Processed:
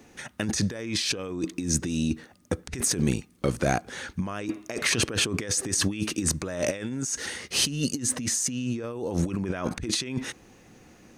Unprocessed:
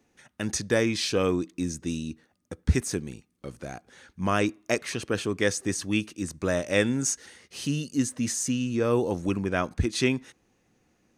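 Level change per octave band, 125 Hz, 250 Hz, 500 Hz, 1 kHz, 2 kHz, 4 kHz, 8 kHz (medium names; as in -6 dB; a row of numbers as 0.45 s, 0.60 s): 0.0 dB, -1.0 dB, -4.5 dB, -2.0 dB, -0.5 dB, +5.0 dB, +5.0 dB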